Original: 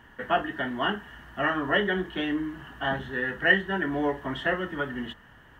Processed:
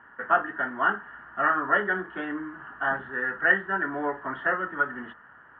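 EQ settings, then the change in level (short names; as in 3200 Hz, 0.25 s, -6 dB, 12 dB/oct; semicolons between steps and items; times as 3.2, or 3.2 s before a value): HPF 290 Hz 6 dB/oct; synth low-pass 1400 Hz, resonance Q 3.7; -2.5 dB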